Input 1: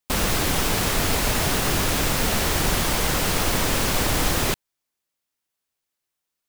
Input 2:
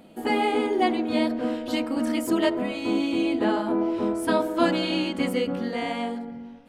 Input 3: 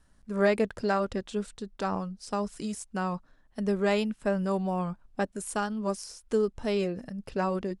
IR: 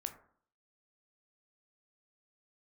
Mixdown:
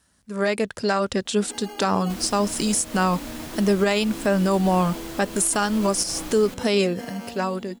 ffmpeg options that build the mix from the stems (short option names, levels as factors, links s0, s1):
-filter_complex "[0:a]adelay=2000,volume=0.158[s0];[1:a]acompressor=threshold=0.0282:ratio=6,acrusher=samples=12:mix=1:aa=0.000001,dynaudnorm=f=130:g=7:m=2,adelay=1250,volume=0.355[s1];[2:a]highpass=79,highshelf=f=2400:g=10,dynaudnorm=f=110:g=17:m=3.76,volume=1.12[s2];[s0][s1][s2]amix=inputs=3:normalize=0,alimiter=limit=0.282:level=0:latency=1:release=133"